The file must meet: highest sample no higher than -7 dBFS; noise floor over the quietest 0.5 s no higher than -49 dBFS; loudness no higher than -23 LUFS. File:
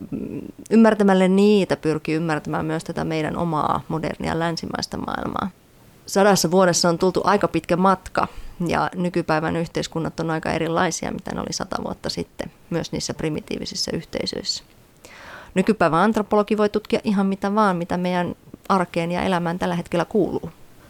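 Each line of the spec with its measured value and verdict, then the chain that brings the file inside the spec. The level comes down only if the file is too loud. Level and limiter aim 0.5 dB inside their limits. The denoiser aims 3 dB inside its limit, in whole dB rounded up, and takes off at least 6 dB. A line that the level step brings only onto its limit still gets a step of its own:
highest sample -5.5 dBFS: fail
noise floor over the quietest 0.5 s -51 dBFS: OK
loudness -21.5 LUFS: fail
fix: gain -2 dB

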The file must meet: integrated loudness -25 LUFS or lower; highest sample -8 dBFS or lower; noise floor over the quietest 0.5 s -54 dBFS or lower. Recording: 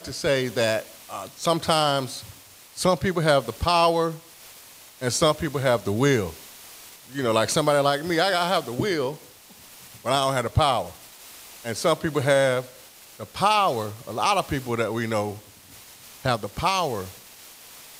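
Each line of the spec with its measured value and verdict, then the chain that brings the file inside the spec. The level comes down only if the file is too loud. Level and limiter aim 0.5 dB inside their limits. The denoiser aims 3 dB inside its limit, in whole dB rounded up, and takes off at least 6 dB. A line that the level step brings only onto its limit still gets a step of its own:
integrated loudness -23.5 LUFS: fail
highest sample -7.0 dBFS: fail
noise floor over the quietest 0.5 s -48 dBFS: fail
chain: denoiser 7 dB, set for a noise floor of -48 dBFS; gain -2 dB

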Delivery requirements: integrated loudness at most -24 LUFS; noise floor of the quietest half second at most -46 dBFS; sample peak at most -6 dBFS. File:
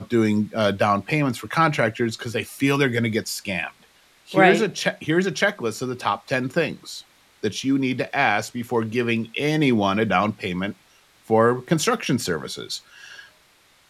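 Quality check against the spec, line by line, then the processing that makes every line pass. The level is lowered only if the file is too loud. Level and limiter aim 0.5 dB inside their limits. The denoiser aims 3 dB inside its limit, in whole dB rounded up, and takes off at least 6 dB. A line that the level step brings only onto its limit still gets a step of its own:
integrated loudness -22.5 LUFS: fail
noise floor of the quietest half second -57 dBFS: OK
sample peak -2.5 dBFS: fail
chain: gain -2 dB; limiter -6.5 dBFS

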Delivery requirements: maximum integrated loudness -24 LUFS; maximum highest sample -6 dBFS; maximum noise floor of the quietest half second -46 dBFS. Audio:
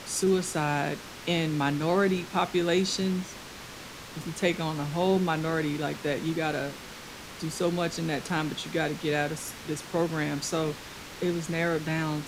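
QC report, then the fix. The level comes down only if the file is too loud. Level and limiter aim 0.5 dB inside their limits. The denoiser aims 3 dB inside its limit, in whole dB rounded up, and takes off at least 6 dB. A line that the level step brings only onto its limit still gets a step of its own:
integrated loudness -29.0 LUFS: OK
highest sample -12.0 dBFS: OK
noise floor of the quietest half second -43 dBFS: fail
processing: denoiser 6 dB, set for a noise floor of -43 dBFS

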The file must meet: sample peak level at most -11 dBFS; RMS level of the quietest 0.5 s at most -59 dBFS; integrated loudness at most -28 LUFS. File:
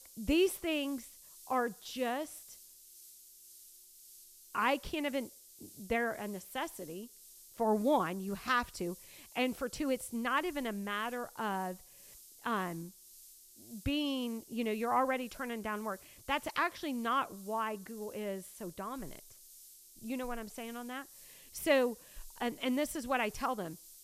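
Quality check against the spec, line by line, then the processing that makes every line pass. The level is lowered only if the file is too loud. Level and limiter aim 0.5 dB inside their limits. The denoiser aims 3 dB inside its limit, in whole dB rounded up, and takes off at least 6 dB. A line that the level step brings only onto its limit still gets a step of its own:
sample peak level -15.5 dBFS: OK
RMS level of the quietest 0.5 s -57 dBFS: fail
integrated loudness -35.5 LUFS: OK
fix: denoiser 6 dB, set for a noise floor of -57 dBFS

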